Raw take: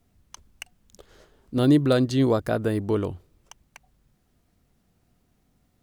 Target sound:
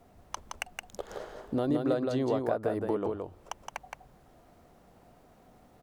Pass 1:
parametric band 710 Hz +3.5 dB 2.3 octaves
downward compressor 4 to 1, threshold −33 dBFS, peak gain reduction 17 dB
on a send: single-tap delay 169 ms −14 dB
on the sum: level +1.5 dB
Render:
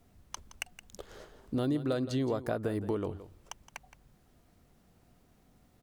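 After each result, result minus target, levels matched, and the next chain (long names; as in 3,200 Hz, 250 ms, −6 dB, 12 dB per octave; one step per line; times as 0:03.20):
echo-to-direct −10 dB; 1,000 Hz band −5.0 dB
parametric band 710 Hz +3.5 dB 2.3 octaves
downward compressor 4 to 1, threshold −33 dBFS, peak gain reduction 17 dB
on a send: single-tap delay 169 ms −4 dB
on the sum: level +1.5 dB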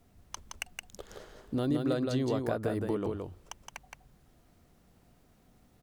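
1,000 Hz band −4.5 dB
parametric band 710 Hz +15 dB 2.3 octaves
downward compressor 4 to 1, threshold −33 dBFS, peak gain reduction 23 dB
on a send: single-tap delay 169 ms −4 dB
on the sum: level +1.5 dB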